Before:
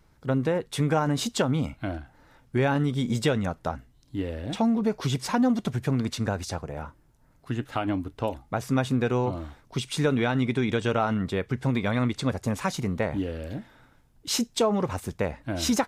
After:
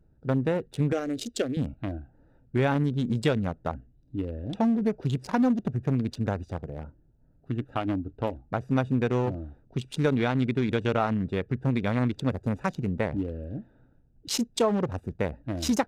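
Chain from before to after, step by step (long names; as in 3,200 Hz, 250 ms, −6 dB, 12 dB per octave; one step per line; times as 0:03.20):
adaptive Wiener filter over 41 samples
0:00.92–0:01.57: phaser with its sweep stopped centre 390 Hz, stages 4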